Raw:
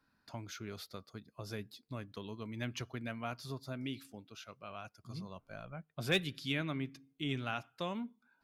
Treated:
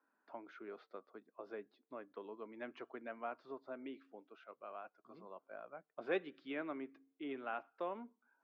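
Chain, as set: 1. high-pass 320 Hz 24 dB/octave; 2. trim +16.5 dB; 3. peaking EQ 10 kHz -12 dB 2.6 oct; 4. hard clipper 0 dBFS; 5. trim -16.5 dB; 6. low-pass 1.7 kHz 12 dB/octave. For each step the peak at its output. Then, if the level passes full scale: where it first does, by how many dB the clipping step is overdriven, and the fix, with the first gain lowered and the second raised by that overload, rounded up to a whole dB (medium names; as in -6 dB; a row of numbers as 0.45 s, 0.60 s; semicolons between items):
-18.0 dBFS, -1.5 dBFS, -4.5 dBFS, -4.5 dBFS, -21.0 dBFS, -24.0 dBFS; nothing clips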